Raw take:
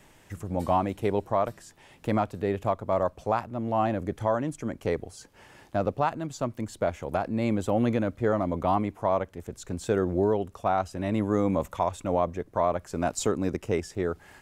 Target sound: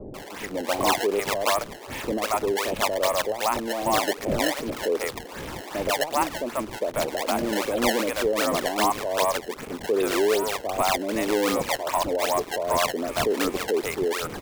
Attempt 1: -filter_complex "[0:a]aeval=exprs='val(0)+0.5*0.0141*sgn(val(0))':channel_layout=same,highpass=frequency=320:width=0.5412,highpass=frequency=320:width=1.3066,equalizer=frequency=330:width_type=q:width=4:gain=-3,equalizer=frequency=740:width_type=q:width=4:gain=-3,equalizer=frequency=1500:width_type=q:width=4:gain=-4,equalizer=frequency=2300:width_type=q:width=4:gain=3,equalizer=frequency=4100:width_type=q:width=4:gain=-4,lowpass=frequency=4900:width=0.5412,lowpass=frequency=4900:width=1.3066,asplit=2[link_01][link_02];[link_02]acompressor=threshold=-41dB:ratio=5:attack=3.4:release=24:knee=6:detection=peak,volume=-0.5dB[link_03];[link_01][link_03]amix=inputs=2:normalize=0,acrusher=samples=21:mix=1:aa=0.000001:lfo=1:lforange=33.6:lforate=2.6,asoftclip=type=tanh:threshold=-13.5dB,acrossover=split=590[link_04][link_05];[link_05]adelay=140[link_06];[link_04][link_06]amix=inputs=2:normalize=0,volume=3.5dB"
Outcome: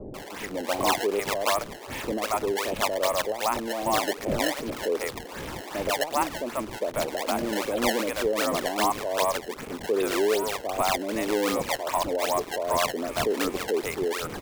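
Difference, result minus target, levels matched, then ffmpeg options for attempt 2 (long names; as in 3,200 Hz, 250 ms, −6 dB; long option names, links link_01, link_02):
downward compressor: peak gain reduction +9.5 dB
-filter_complex "[0:a]aeval=exprs='val(0)+0.5*0.0141*sgn(val(0))':channel_layout=same,highpass=frequency=320:width=0.5412,highpass=frequency=320:width=1.3066,equalizer=frequency=330:width_type=q:width=4:gain=-3,equalizer=frequency=740:width_type=q:width=4:gain=-3,equalizer=frequency=1500:width_type=q:width=4:gain=-4,equalizer=frequency=2300:width_type=q:width=4:gain=3,equalizer=frequency=4100:width_type=q:width=4:gain=-4,lowpass=frequency=4900:width=0.5412,lowpass=frequency=4900:width=1.3066,asplit=2[link_01][link_02];[link_02]acompressor=threshold=-29dB:ratio=5:attack=3.4:release=24:knee=6:detection=peak,volume=-0.5dB[link_03];[link_01][link_03]amix=inputs=2:normalize=0,acrusher=samples=21:mix=1:aa=0.000001:lfo=1:lforange=33.6:lforate=2.6,asoftclip=type=tanh:threshold=-13.5dB,acrossover=split=590[link_04][link_05];[link_05]adelay=140[link_06];[link_04][link_06]amix=inputs=2:normalize=0,volume=3.5dB"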